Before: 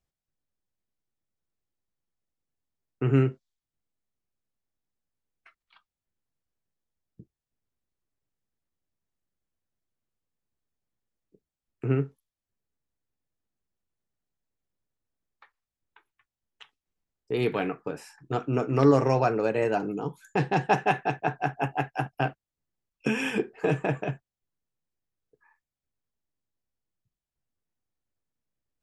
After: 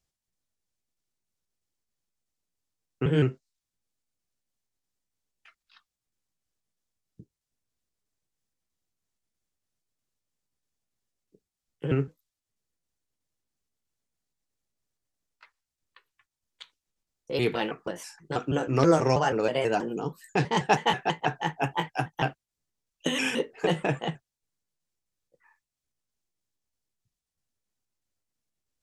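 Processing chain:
pitch shifter gated in a rhythm +2.5 semitones, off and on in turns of 161 ms
parametric band 6,400 Hz +8 dB 1.9 octaves
tape wow and flutter 25 cents

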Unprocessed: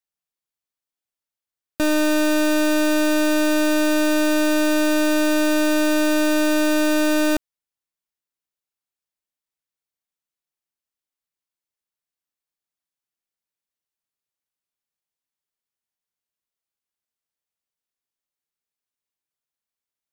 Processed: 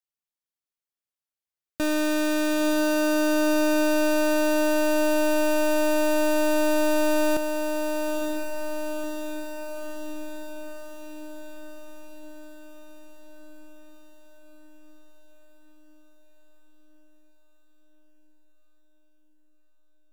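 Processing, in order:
feedback delay with all-pass diffusion 960 ms, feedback 64%, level −6 dB
level −5.5 dB

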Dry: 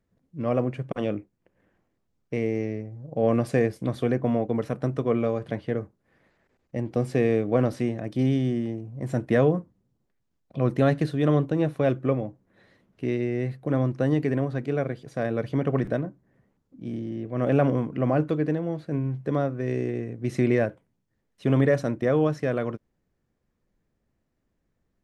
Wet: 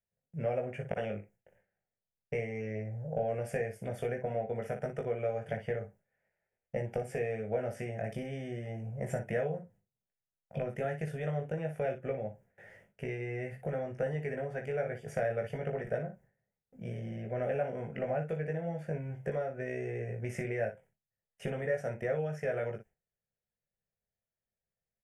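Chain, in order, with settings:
noise gate with hold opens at −52 dBFS
low-shelf EQ 98 Hz −9.5 dB
downward compressor 6 to 1, threshold −34 dBFS, peak gain reduction 16.5 dB
phaser with its sweep stopped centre 1,100 Hz, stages 6
ambience of single reflections 19 ms −3.5 dB, 59 ms −9 dB
level +5 dB

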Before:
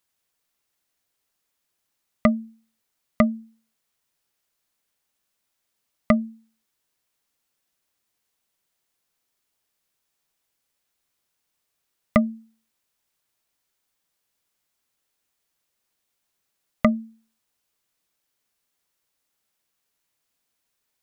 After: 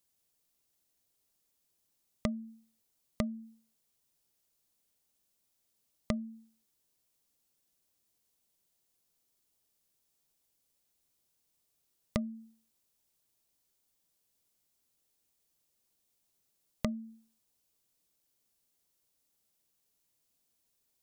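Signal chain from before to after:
downward compressor 16 to 1, threshold −28 dBFS, peak gain reduction 16.5 dB
parametric band 1,600 Hz −10 dB 2.3 octaves
level +1 dB

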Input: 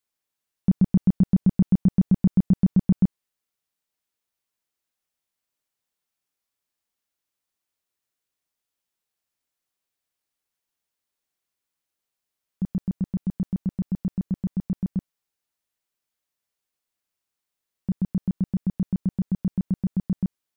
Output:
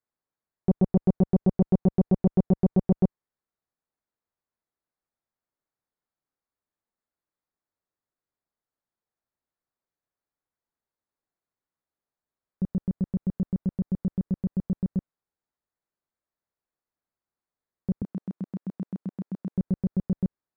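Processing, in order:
adaptive Wiener filter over 15 samples
0:18.02–0:19.56: high-pass filter 290 Hz 12 dB per octave
saturating transformer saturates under 200 Hz

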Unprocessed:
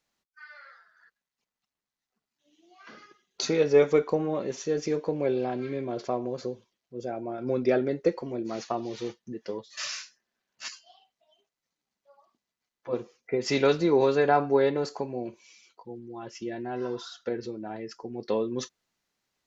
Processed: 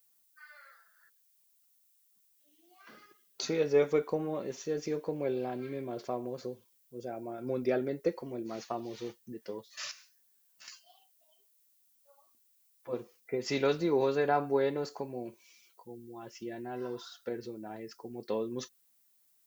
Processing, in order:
0:09.91–0:10.68: downward compressor 6 to 1, threshold −47 dBFS, peak gain reduction 13 dB
background noise violet −63 dBFS
level −6 dB

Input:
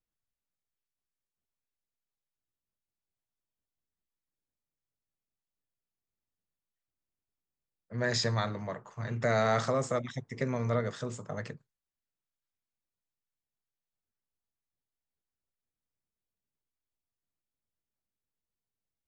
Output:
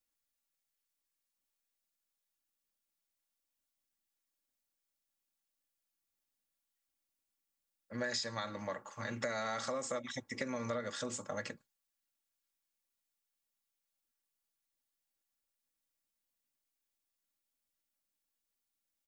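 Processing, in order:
spectral tilt +2 dB per octave
comb filter 3.6 ms, depth 62%
downward compressor 12 to 1, threshold −34 dBFS, peak gain reduction 13.5 dB

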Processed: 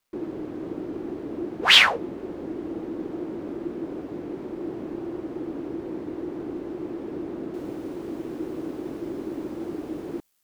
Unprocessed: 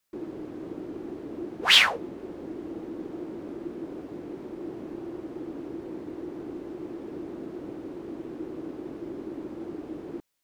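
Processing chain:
bit-depth reduction 12 bits, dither none
high-shelf EQ 5,200 Hz −6 dB, from 0:07.54 +6 dB
level +4.5 dB

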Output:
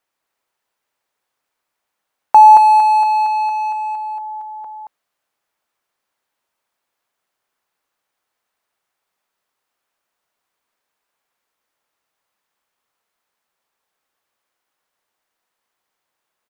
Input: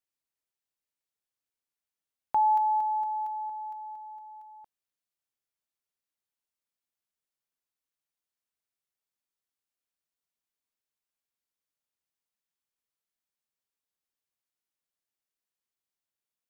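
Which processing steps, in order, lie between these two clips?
parametric band 940 Hz +13 dB 3 octaves
in parallel at −6 dB: gain into a clipping stage and back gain 26.5 dB
on the sum: single-tap delay 224 ms −4 dB
level +4.5 dB

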